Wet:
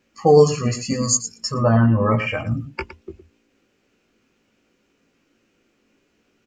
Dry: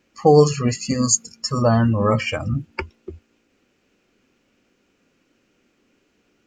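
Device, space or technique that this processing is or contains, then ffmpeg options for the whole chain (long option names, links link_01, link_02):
slapback doubling: -filter_complex "[0:a]asplit=3[link_01][link_02][link_03];[link_02]adelay=18,volume=-5dB[link_04];[link_03]adelay=113,volume=-12dB[link_05];[link_01][link_04][link_05]amix=inputs=3:normalize=0,asettb=1/sr,asplit=3[link_06][link_07][link_08];[link_06]atrim=end=1.544[link_09];[link_07]atrim=start=1.54:end=2.47,asetpts=PTS-STARTPTS,afade=type=in:duration=0.004:curve=qsin,afade=type=out:start_time=0.926:duration=0.004:curve=qsin,highshelf=frequency=3200:width_type=q:width=1.5:gain=-12[link_10];[link_08]atrim=start=2.466[link_11];[link_09][link_10]acrossfade=duration=0.004:curve1=hsin:curve2=qsin[link_12];[link_12][link_11]acrossfade=duration=0.004:curve1=qsin:curve2=hsin,volume=-2dB"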